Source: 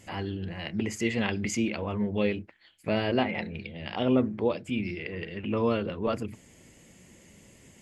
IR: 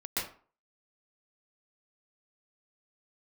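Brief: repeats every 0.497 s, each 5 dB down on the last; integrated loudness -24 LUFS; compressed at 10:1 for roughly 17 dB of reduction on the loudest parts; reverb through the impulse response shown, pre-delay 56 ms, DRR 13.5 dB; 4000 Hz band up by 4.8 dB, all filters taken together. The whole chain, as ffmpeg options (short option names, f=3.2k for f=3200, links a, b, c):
-filter_complex "[0:a]equalizer=f=4k:t=o:g=7.5,acompressor=threshold=-37dB:ratio=10,aecho=1:1:497|994|1491|1988|2485|2982|3479:0.562|0.315|0.176|0.0988|0.0553|0.031|0.0173,asplit=2[a][b];[1:a]atrim=start_sample=2205,adelay=56[c];[b][c]afir=irnorm=-1:irlink=0,volume=-18.5dB[d];[a][d]amix=inputs=2:normalize=0,volume=16.5dB"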